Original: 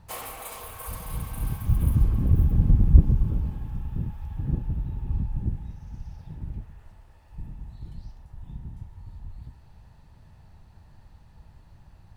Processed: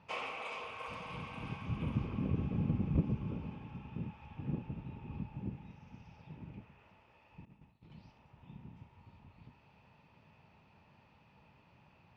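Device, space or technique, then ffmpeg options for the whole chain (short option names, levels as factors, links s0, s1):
kitchen radio: -filter_complex "[0:a]asettb=1/sr,asplit=3[s0][s1][s2];[s0]atrim=end=7.454[s3];[s1]atrim=start=7.45:end=7.9,asetpts=PTS-STARTPTS,afade=t=in:d=0.004:c=qsin,afade=t=out:st=0.446:d=0.004:c=qsin,agate=range=0.0224:threshold=0.0282:ratio=3:detection=peak[s4];[s2]atrim=start=7.896[s5];[s3][s4]acrossfade=d=0.004:c1=hsin:c2=qsin[s6];[s6][s5]acrossfade=d=0.004:c1=qsin:c2=hsin,highpass=220,equalizer=f=330:t=q:w=4:g=-4,equalizer=f=730:t=q:w=4:g=-4,equalizer=f=1700:t=q:w=4:g=-7,equalizer=f=2500:t=q:w=4:g=10,equalizer=f=4100:t=q:w=4:g=-9,lowpass=f=4600:w=0.5412,lowpass=f=4600:w=1.3066,volume=0.891"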